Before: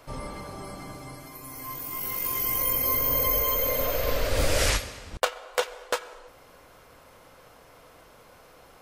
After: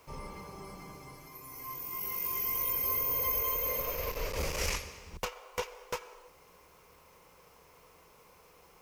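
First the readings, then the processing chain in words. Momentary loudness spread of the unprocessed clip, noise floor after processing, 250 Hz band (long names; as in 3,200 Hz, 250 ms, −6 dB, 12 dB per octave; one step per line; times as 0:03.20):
18 LU, −60 dBFS, −9.5 dB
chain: asymmetric clip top −26 dBFS
EQ curve with evenly spaced ripples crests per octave 0.79, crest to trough 8 dB
background noise white −61 dBFS
level −8 dB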